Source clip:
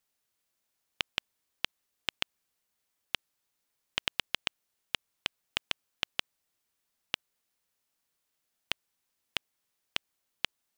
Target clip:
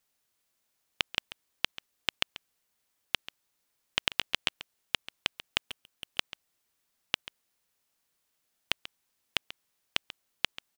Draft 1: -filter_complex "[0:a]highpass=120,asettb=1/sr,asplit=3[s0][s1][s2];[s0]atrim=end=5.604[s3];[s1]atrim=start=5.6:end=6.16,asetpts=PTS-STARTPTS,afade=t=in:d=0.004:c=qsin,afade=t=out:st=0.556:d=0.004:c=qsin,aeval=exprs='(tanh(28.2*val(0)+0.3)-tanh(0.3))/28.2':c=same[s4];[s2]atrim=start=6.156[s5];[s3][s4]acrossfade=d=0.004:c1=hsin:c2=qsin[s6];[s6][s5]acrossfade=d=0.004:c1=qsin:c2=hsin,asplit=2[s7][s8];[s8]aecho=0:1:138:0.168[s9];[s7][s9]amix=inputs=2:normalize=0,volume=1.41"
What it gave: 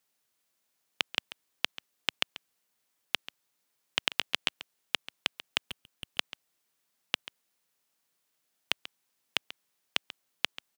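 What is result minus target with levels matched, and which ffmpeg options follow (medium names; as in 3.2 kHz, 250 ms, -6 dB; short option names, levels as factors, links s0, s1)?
125 Hz band -2.5 dB
-filter_complex "[0:a]asettb=1/sr,asplit=3[s0][s1][s2];[s0]atrim=end=5.604[s3];[s1]atrim=start=5.6:end=6.16,asetpts=PTS-STARTPTS,afade=t=in:d=0.004:c=qsin,afade=t=out:st=0.556:d=0.004:c=qsin,aeval=exprs='(tanh(28.2*val(0)+0.3)-tanh(0.3))/28.2':c=same[s4];[s2]atrim=start=6.156[s5];[s3][s4]acrossfade=d=0.004:c1=hsin:c2=qsin[s6];[s6][s5]acrossfade=d=0.004:c1=qsin:c2=hsin,asplit=2[s7][s8];[s8]aecho=0:1:138:0.168[s9];[s7][s9]amix=inputs=2:normalize=0,volume=1.41"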